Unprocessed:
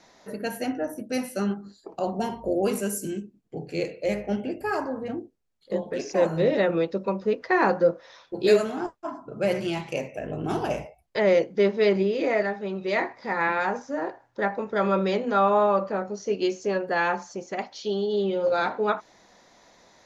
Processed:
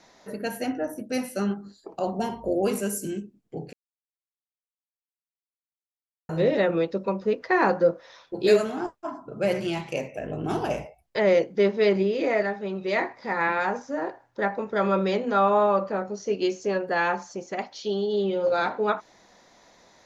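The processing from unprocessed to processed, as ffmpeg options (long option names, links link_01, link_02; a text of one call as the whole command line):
ffmpeg -i in.wav -filter_complex "[0:a]asplit=3[link_01][link_02][link_03];[link_01]atrim=end=3.73,asetpts=PTS-STARTPTS,afade=type=out:start_time=3.726:duration=0.004:curve=hsin[link_04];[link_02]atrim=start=3.73:end=6.29,asetpts=PTS-STARTPTS,volume=0[link_05];[link_03]atrim=start=6.29,asetpts=PTS-STARTPTS,afade=type=in:duration=0.004:curve=hsin[link_06];[link_04][link_05][link_06]concat=n=3:v=0:a=1" out.wav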